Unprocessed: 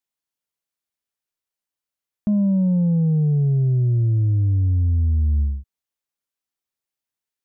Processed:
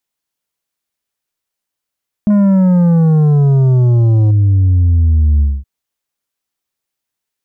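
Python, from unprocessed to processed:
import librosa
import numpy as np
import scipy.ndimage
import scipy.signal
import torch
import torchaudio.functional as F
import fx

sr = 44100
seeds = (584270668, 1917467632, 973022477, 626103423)

y = fx.leveller(x, sr, passes=1, at=(2.3, 4.31))
y = y * 10.0 ** (8.0 / 20.0)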